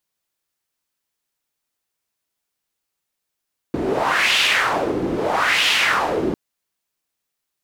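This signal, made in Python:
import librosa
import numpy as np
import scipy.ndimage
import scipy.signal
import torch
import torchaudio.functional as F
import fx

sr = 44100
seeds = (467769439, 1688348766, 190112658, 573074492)

y = fx.wind(sr, seeds[0], length_s=2.6, low_hz=300.0, high_hz=2900.0, q=2.6, gusts=2, swing_db=5.0)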